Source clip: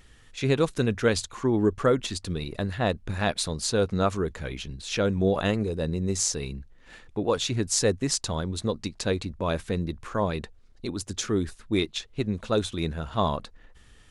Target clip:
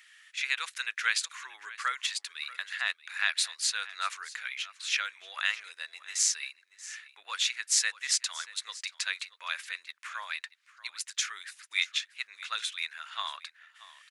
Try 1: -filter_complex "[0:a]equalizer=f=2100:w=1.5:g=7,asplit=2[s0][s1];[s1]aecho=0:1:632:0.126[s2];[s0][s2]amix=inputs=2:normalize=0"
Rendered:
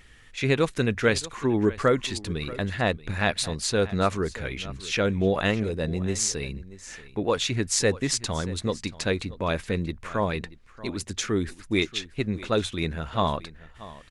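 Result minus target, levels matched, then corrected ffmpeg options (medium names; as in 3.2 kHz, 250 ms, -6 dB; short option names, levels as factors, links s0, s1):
1 kHz band +3.5 dB
-filter_complex "[0:a]highpass=f=1400:w=0.5412,highpass=f=1400:w=1.3066,equalizer=f=2100:w=1.5:g=7,asplit=2[s0][s1];[s1]aecho=0:1:632:0.126[s2];[s0][s2]amix=inputs=2:normalize=0"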